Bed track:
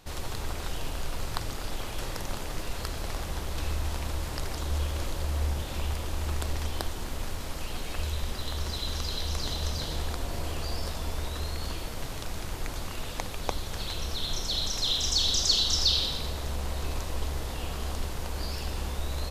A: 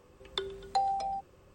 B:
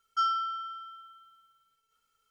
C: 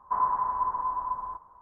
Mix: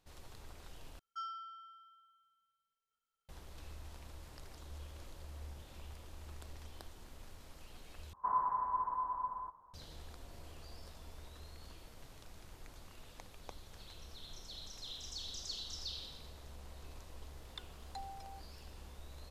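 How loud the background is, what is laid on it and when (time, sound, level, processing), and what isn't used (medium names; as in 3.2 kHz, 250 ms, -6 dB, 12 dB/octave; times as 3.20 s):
bed track -19.5 dB
0.99 s: replace with B -16 dB
8.13 s: replace with C -7.5 dB
17.20 s: add A -13.5 dB + high-pass 960 Hz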